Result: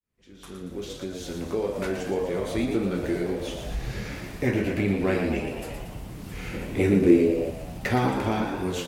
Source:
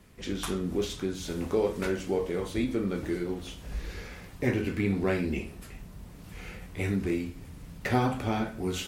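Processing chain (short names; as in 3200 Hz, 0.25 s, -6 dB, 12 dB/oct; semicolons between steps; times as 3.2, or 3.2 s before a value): opening faded in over 2.73 s; AGC gain up to 6 dB; frequency-shifting echo 0.116 s, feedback 56%, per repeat +76 Hz, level -7 dB; in parallel at 0 dB: compressor, threshold -31 dBFS, peak gain reduction 16 dB; 6.53–7.5 on the sum: bell 360 Hz +10.5 dB 1.4 oct; gain -5.5 dB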